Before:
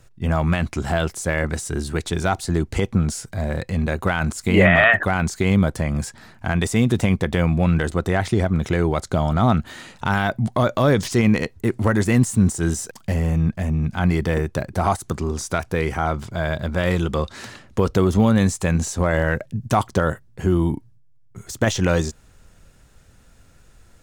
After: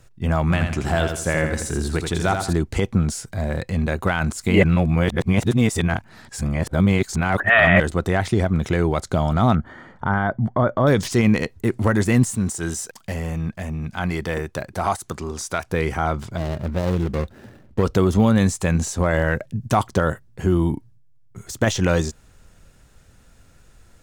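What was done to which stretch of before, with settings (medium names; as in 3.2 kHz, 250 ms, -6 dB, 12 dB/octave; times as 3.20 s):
0.42–2.53 s: feedback delay 82 ms, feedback 38%, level -6 dB
4.63–7.80 s: reverse
9.55–10.87 s: Savitzky-Golay filter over 41 samples
12.35–15.70 s: bass shelf 390 Hz -7.5 dB
16.37–17.83 s: median filter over 41 samples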